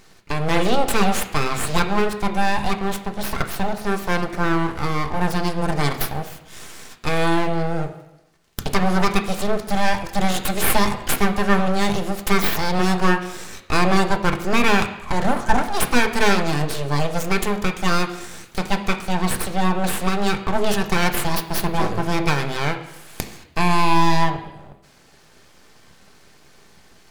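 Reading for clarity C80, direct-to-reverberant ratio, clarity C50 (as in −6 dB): 12.5 dB, 4.0 dB, 10.5 dB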